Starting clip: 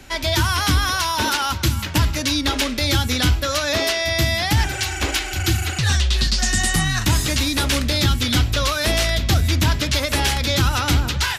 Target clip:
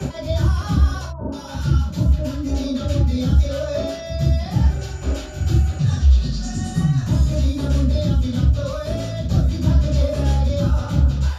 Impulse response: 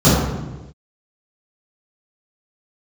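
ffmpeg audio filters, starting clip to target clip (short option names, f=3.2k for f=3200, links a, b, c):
-filter_complex "[0:a]equalizer=f=590:t=o:w=0.28:g=11,asettb=1/sr,asplit=3[a][b][c];[a]atrim=end=1.034[d];[b]atrim=start=1.03:end=3.61,asetpts=PTS-STARTPTS,afade=t=in:d=0.004:c=qsin,afade=t=out:st=2.576:d=0.004:c=qsin,acrossover=split=970[e][f];[f]adelay=290[g];[e][g]amix=inputs=2:normalize=0,atrim=end_sample=113778[h];[c]atrim=start=3.606[i];[d][h]acrossfade=d=0.004:c1=hsin:c2=qsin[j];[j][i]acrossfade=d=0.004:c1=qsin:c2=hsin[k];[1:a]atrim=start_sample=2205,atrim=end_sample=4410[l];[k][l]afir=irnorm=-1:irlink=0,dynaudnorm=f=120:g=9:m=11.5dB,volume=-5dB"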